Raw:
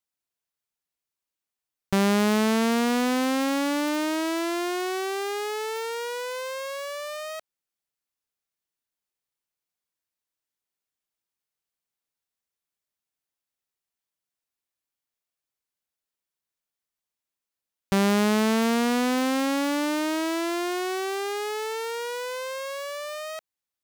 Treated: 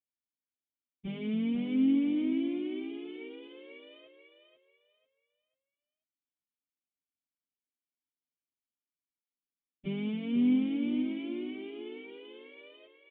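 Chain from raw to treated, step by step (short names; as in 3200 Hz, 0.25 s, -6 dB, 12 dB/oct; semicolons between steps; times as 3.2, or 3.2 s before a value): vocal tract filter i; plain phase-vocoder stretch 0.55×; feedback echo 0.491 s, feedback 29%, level -7 dB; gain +3.5 dB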